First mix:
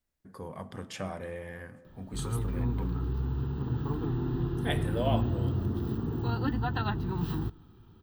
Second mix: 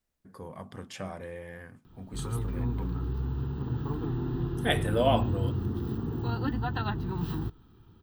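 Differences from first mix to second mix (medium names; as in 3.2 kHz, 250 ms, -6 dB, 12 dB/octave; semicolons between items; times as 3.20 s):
second voice +8.0 dB; reverb: off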